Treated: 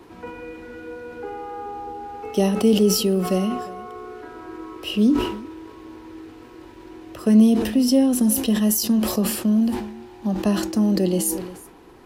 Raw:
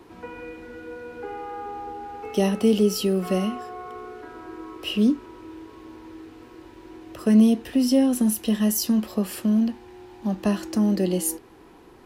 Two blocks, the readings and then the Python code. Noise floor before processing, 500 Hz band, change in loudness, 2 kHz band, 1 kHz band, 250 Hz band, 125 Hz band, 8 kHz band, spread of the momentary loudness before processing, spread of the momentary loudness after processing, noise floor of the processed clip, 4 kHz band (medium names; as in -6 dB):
-49 dBFS, +2.5 dB, +3.0 dB, +2.0 dB, +3.0 dB, +2.5 dB, no reading, +4.5 dB, 20 LU, 20 LU, -44 dBFS, +4.0 dB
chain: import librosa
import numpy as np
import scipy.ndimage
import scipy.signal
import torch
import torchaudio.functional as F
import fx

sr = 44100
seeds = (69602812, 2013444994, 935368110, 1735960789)

y = fx.dynamic_eq(x, sr, hz=1900.0, q=0.97, threshold_db=-44.0, ratio=4.0, max_db=-4)
y = y + 10.0 ** (-22.0 / 20.0) * np.pad(y, (int(353 * sr / 1000.0), 0))[:len(y)]
y = fx.sustainer(y, sr, db_per_s=64.0)
y = F.gain(torch.from_numpy(y), 2.0).numpy()